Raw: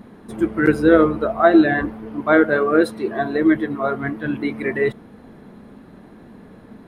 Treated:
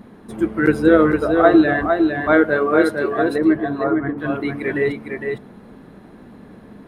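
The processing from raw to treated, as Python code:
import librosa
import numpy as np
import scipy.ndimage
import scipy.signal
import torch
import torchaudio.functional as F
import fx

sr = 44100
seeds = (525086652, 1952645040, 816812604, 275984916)

y = fx.lowpass(x, sr, hz=1500.0, slope=12, at=(3.38, 4.18))
y = y + 10.0 ** (-5.0 / 20.0) * np.pad(y, (int(457 * sr / 1000.0), 0))[:len(y)]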